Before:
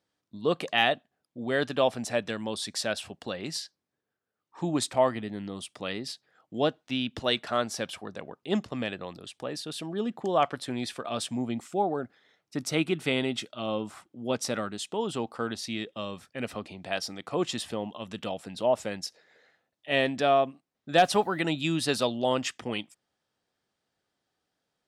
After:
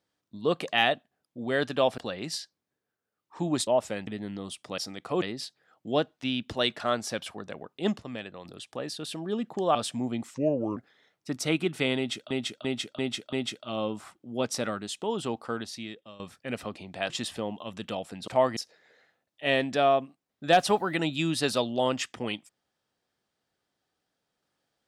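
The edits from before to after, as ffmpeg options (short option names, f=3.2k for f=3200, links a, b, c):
-filter_complex "[0:a]asplit=19[a][b][c][d][e][f][g][h][i][j][k][l][m][n][o][p][q][r][s];[a]atrim=end=1.982[t];[b]atrim=start=3.198:end=4.892[u];[c]atrim=start=18.618:end=19.022[v];[d]atrim=start=5.178:end=5.892[w];[e]atrim=start=16.998:end=17.442[x];[f]atrim=start=5.888:end=8.702[y];[g]atrim=start=8.698:end=9.122,asetpts=PTS-STARTPTS,volume=-5.5dB[z];[h]atrim=start=9.118:end=10.422[aa];[i]atrim=start=11.118:end=11.714[ab];[j]atrim=start=11.71:end=12.03,asetpts=PTS-STARTPTS,asetrate=33075,aresample=44100[ac];[k]atrim=start=12.026:end=13.572[ad];[l]atrim=start=13.228:end=13.572[ae];[m]atrim=start=13.228:end=13.572[af];[n]atrim=start=13.228:end=13.572[ag];[o]atrim=start=13.228:end=16.1,asetpts=PTS-STARTPTS,afade=t=out:st=2.102:d=0.77:silence=0.149624[ah];[p]atrim=start=16.1:end=17.002,asetpts=PTS-STARTPTS,afade=t=in:d=0.004:c=hsin:silence=0.149624[ai];[q]atrim=start=17.438:end=18.622[aj];[r]atrim=start=4.888:end=5.182[ak];[s]atrim=start=19.018[al];[t][u]acrossfade=d=0.004:c1=hsin:c2=hsin[am];[am][v]acrossfade=d=0.004:c1=hsin:c2=hsin[an];[an][w]acrossfade=d=0.004:c1=hsin:c2=hsin[ao];[ao][x]acrossfade=d=0.004:c1=hsin:c2=hsin[ap];[ap][y]acrossfade=d=0.004:c1=hsin:c2=hsin[aq];[aq][z]acrossfade=d=0.004:c1=hsin:c2=hsin[ar];[ar][aa]acrossfade=d=0.004:c1=hsin:c2=hsin[as];[as][ab]acrossfade=d=0.004:c1=hsin:c2=hsin[at];[at][ac]acrossfade=d=0.004:c1=hsin:c2=hsin[au];[au][ad]acrossfade=d=0.004:c1=hsin:c2=hsin[av];[av][ae]acrossfade=d=0.004:c1=hsin:c2=hsin[aw];[aw][af]acrossfade=d=0.004:c1=hsin:c2=hsin[ax];[ax][ag]acrossfade=d=0.004:c1=hsin:c2=hsin[ay];[ah][ai]concat=n=2:v=0:a=1[az];[ay][az]acrossfade=d=0.004:c1=hsin:c2=hsin[ba];[ba][aj]acrossfade=d=0.004:c1=hsin:c2=hsin[bb];[bb][ak]acrossfade=d=0.004:c1=hsin:c2=hsin[bc];[bc][al]acrossfade=d=0.004:c1=hsin:c2=hsin"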